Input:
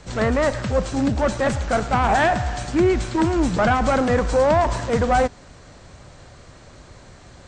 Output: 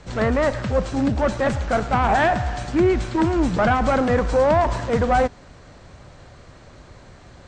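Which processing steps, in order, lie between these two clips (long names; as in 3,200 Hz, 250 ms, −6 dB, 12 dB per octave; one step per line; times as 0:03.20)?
high-shelf EQ 7,200 Hz −11.5 dB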